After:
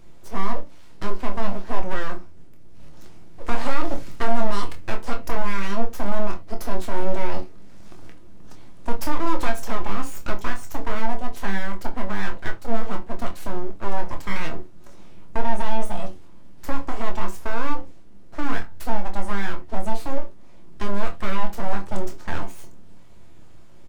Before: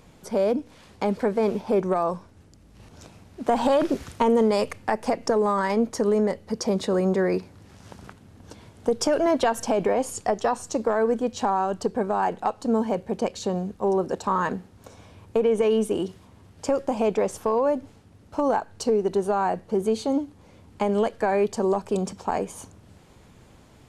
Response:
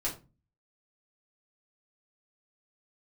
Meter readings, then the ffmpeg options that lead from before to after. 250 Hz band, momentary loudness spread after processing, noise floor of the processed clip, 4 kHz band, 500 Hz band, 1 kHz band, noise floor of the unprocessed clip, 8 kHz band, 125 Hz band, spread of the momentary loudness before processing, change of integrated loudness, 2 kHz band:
−6.0 dB, 12 LU, −37 dBFS, −1.5 dB, −10.0 dB, −3.0 dB, −53 dBFS, −6.0 dB, +2.5 dB, 7 LU, −6.0 dB, +3.0 dB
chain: -filter_complex "[0:a]lowshelf=frequency=110:gain=10.5,aeval=exprs='abs(val(0))':channel_layout=same,asplit=2[link_01][link_02];[link_02]adelay=25,volume=-8dB[link_03];[link_01][link_03]amix=inputs=2:normalize=0,asplit=2[link_04][link_05];[1:a]atrim=start_sample=2205,afade=type=out:start_time=0.13:duration=0.01,atrim=end_sample=6174[link_06];[link_05][link_06]afir=irnorm=-1:irlink=0,volume=-5.5dB[link_07];[link_04][link_07]amix=inputs=2:normalize=0,volume=-7dB"

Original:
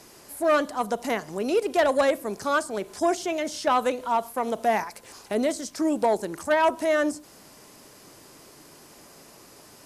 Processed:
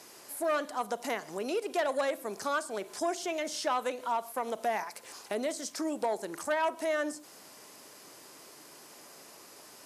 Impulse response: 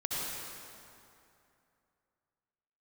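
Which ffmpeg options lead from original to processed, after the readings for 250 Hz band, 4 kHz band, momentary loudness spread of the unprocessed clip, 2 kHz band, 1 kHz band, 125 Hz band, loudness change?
−10.0 dB, −4.5 dB, 7 LU, −7.0 dB, −7.5 dB, below −10 dB, −8.0 dB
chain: -filter_complex "[0:a]acompressor=threshold=-29dB:ratio=2,highpass=frequency=420:poles=1,asplit=2[link_01][link_02];[1:a]atrim=start_sample=2205,atrim=end_sample=3528,adelay=50[link_03];[link_02][link_03]afir=irnorm=-1:irlink=0,volume=-20.5dB[link_04];[link_01][link_04]amix=inputs=2:normalize=0,volume=-1dB"

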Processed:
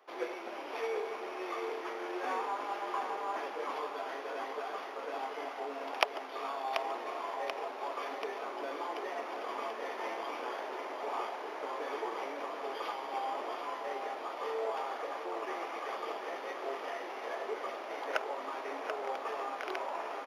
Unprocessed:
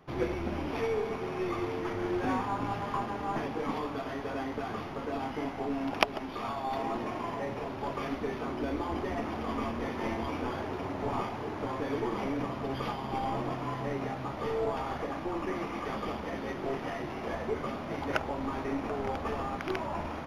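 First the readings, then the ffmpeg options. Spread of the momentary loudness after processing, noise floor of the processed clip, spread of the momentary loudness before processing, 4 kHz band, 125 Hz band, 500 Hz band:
4 LU, −43 dBFS, 4 LU, −1.5 dB, below −35 dB, −3.5 dB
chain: -filter_complex "[0:a]highpass=frequency=430:width=0.5412,highpass=frequency=430:width=1.3066,asplit=2[link_01][link_02];[link_02]aecho=0:1:735|1470|2205|2940|3675|4410|5145:0.422|0.245|0.142|0.0823|0.0477|0.0277|0.0161[link_03];[link_01][link_03]amix=inputs=2:normalize=0,volume=-2.5dB"

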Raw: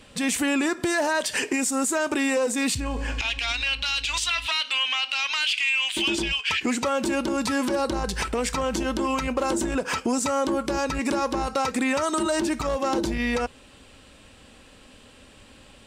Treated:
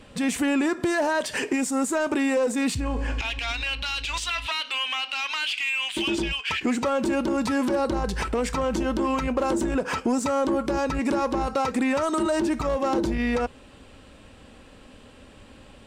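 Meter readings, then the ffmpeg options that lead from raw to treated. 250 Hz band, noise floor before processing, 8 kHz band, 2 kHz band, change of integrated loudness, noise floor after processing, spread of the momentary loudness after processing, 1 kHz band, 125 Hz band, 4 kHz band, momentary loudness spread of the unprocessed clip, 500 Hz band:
+1.5 dB, −51 dBFS, −5.5 dB, −2.5 dB, −0.5 dB, −49 dBFS, 4 LU, 0.0 dB, +2.0 dB, −4.0 dB, 4 LU, +1.0 dB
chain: -filter_complex "[0:a]highshelf=frequency=2100:gain=-8.5,asplit=2[link_01][link_02];[link_02]asoftclip=type=tanh:threshold=-30dB,volume=-6.5dB[link_03];[link_01][link_03]amix=inputs=2:normalize=0"

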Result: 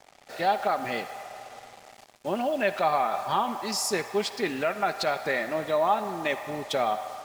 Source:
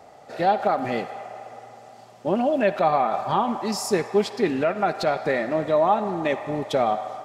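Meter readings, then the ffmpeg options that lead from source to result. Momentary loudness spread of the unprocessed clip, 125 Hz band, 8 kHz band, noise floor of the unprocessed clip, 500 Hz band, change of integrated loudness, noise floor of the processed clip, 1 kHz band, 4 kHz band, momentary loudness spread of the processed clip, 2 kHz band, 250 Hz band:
11 LU, −8.5 dB, +2.0 dB, −48 dBFS, −5.5 dB, −4.0 dB, −55 dBFS, −3.5 dB, +1.5 dB, 14 LU, 0.0 dB, −8.0 dB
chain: -af "tiltshelf=frequency=850:gain=-5.5,acrusher=bits=6:mix=0:aa=0.5,volume=-3.5dB"

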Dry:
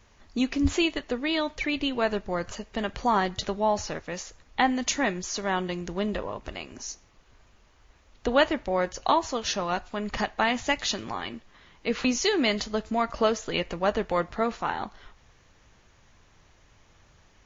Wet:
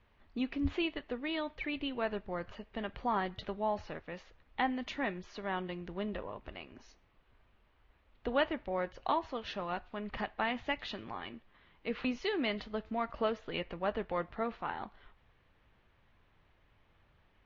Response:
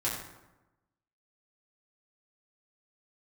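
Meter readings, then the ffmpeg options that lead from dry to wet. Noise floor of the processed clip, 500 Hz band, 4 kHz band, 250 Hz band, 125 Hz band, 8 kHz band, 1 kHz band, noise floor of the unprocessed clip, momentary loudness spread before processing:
−69 dBFS, −9.0 dB, −11.5 dB, −9.0 dB, −9.0 dB, can't be measured, −9.0 dB, −60 dBFS, 11 LU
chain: -af "lowpass=frequency=3500:width=0.5412,lowpass=frequency=3500:width=1.3066,volume=-9dB"

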